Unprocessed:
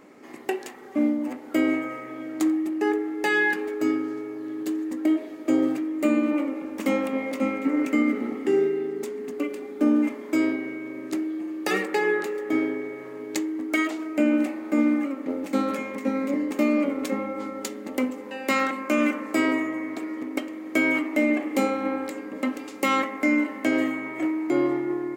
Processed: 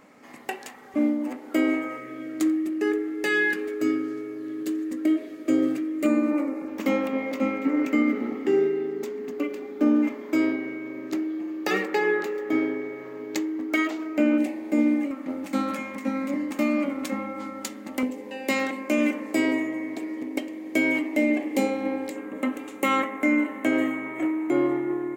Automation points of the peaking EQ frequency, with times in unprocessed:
peaking EQ -12.5 dB 0.46 oct
360 Hz
from 0.94 s 110 Hz
from 1.97 s 860 Hz
from 6.06 s 3.1 kHz
from 6.68 s 9.4 kHz
from 14.38 s 1.3 kHz
from 15.11 s 430 Hz
from 18.03 s 1.3 kHz
from 22.16 s 4.9 kHz

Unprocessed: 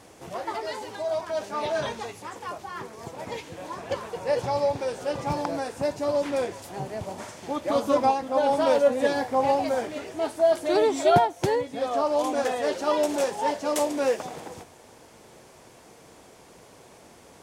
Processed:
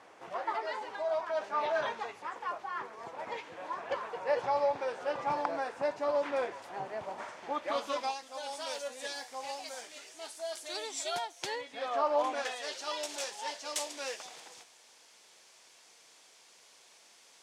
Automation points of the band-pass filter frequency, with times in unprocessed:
band-pass filter, Q 0.85
7.50 s 1.3 kHz
8.29 s 6.5 kHz
11.15 s 6.5 kHz
12.19 s 1.2 kHz
12.57 s 4.6 kHz

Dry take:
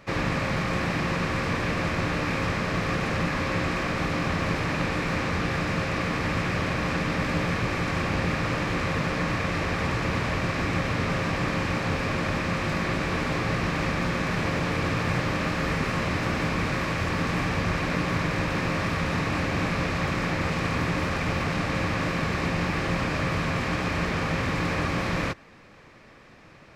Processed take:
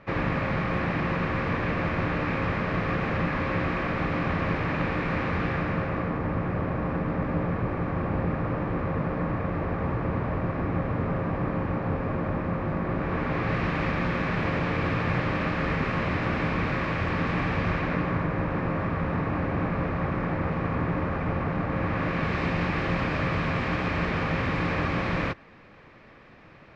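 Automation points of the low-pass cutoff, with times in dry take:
5.45 s 2.4 kHz
6.21 s 1.1 kHz
12.86 s 1.1 kHz
13.60 s 2.8 kHz
17.70 s 2.8 kHz
18.27 s 1.4 kHz
21.70 s 1.4 kHz
22.36 s 3.3 kHz

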